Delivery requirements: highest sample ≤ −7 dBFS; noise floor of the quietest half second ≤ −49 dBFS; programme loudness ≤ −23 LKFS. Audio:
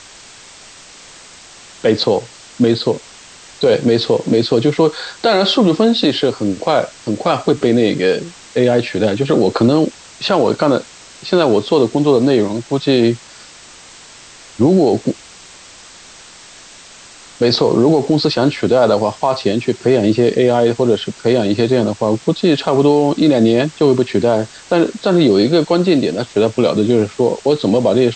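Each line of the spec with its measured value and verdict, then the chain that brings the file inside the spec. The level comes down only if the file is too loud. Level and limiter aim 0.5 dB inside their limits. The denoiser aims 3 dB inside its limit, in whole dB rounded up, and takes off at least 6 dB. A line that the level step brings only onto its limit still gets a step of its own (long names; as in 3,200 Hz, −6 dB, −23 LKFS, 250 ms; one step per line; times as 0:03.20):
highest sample −3.0 dBFS: out of spec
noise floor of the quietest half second −40 dBFS: out of spec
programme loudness −14.5 LKFS: out of spec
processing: broadband denoise 6 dB, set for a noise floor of −40 dBFS
level −9 dB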